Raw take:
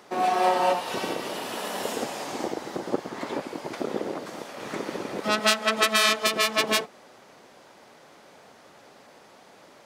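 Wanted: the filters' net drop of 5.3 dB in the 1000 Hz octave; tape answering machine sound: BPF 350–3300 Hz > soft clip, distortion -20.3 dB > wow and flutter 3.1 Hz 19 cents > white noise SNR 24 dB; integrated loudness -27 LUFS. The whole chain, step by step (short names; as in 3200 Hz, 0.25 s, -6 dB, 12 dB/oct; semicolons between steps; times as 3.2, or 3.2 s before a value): BPF 350–3300 Hz; bell 1000 Hz -7.5 dB; soft clip -13.5 dBFS; wow and flutter 3.1 Hz 19 cents; white noise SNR 24 dB; gain +4 dB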